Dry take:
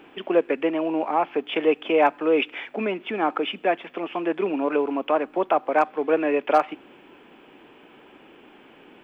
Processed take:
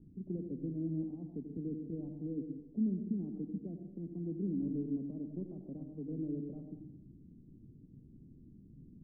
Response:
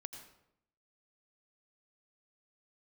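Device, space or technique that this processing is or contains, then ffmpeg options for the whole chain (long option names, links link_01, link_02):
club heard from the street: -filter_complex "[0:a]alimiter=limit=-15dB:level=0:latency=1:release=33,lowpass=frequency=150:width=0.5412,lowpass=frequency=150:width=1.3066[link_01];[1:a]atrim=start_sample=2205[link_02];[link_01][link_02]afir=irnorm=-1:irlink=0,volume=17dB"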